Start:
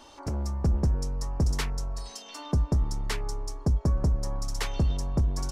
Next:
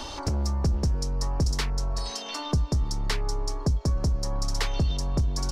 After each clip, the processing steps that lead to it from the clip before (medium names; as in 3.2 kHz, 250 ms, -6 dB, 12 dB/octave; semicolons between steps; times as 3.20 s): peaking EQ 4.5 kHz +7.5 dB 1.1 oct; three bands compressed up and down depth 70%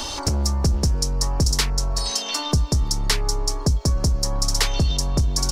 treble shelf 4.6 kHz +11.5 dB; trim +4.5 dB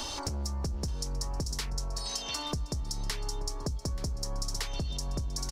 compression, threshold -23 dBFS, peak gain reduction 8.5 dB; delay 881 ms -16.5 dB; trim -7.5 dB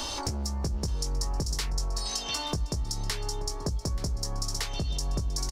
doubling 19 ms -8.5 dB; trim +2.5 dB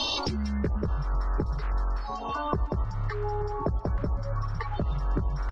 coarse spectral quantiser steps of 30 dB; low-pass sweep 3.9 kHz -> 1.3 kHz, 0.23–0.81 s; trim +3 dB